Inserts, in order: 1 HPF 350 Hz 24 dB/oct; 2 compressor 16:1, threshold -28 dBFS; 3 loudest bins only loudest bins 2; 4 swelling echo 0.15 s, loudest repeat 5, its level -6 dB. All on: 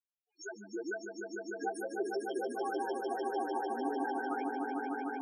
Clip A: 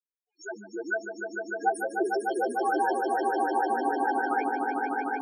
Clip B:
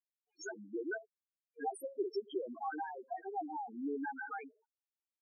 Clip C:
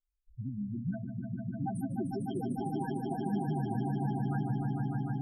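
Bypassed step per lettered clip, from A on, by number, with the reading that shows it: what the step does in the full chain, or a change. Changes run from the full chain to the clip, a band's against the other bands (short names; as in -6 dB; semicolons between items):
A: 2, mean gain reduction 6.5 dB; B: 4, echo-to-direct 3.5 dB to none; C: 1, 250 Hz band +12.0 dB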